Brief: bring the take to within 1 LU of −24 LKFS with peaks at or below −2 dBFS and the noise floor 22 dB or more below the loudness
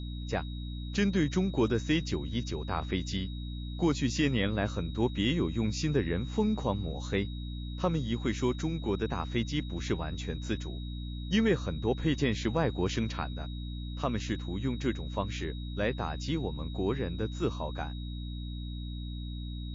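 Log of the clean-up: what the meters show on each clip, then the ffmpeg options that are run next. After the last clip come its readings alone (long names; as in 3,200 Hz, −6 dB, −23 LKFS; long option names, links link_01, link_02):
mains hum 60 Hz; hum harmonics up to 300 Hz; level of the hum −35 dBFS; interfering tone 3,800 Hz; level of the tone −49 dBFS; integrated loudness −32.5 LKFS; sample peak −16.0 dBFS; target loudness −24.0 LKFS
→ -af "bandreject=frequency=60:width_type=h:width=4,bandreject=frequency=120:width_type=h:width=4,bandreject=frequency=180:width_type=h:width=4,bandreject=frequency=240:width_type=h:width=4,bandreject=frequency=300:width_type=h:width=4"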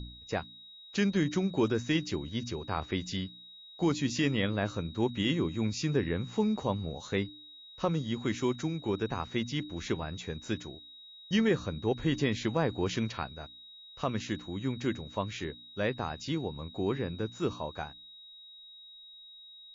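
mains hum none found; interfering tone 3,800 Hz; level of the tone −49 dBFS
→ -af "bandreject=frequency=3800:width=30"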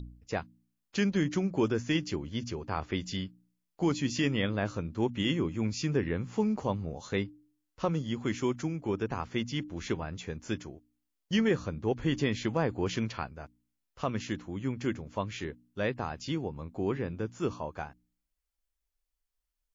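interfering tone none found; integrated loudness −32.5 LKFS; sample peak −16.0 dBFS; target loudness −24.0 LKFS
→ -af "volume=8.5dB"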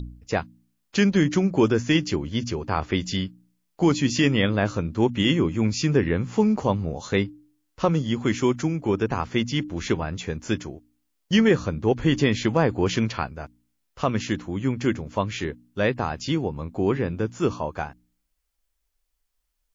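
integrated loudness −24.0 LKFS; sample peak −7.5 dBFS; background noise floor −75 dBFS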